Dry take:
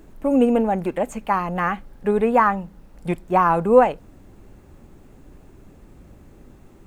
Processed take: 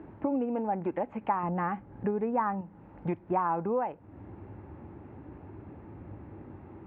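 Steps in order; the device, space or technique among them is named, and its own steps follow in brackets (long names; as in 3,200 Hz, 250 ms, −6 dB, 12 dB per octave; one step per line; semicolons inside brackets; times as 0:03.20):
0:01.43–0:02.61: low-shelf EQ 420 Hz +7.5 dB
bass amplifier (downward compressor 4 to 1, threshold −32 dBFS, peak gain reduction 20 dB; loudspeaker in its box 66–2,300 Hz, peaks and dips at 100 Hz +9 dB, 320 Hz +6 dB, 880 Hz +8 dB)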